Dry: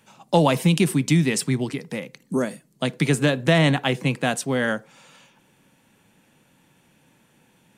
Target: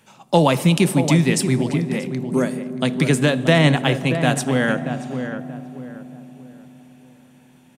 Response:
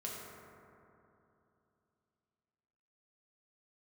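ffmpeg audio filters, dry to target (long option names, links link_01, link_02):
-filter_complex "[0:a]asplit=2[link_01][link_02];[link_02]adelay=631,lowpass=frequency=1400:poles=1,volume=-8dB,asplit=2[link_03][link_04];[link_04]adelay=631,lowpass=frequency=1400:poles=1,volume=0.34,asplit=2[link_05][link_06];[link_06]adelay=631,lowpass=frequency=1400:poles=1,volume=0.34,asplit=2[link_07][link_08];[link_08]adelay=631,lowpass=frequency=1400:poles=1,volume=0.34[link_09];[link_01][link_03][link_05][link_07][link_09]amix=inputs=5:normalize=0,asplit=2[link_10][link_11];[1:a]atrim=start_sample=2205,asetrate=25578,aresample=44100[link_12];[link_11][link_12]afir=irnorm=-1:irlink=0,volume=-15.5dB[link_13];[link_10][link_13]amix=inputs=2:normalize=0,volume=1.5dB"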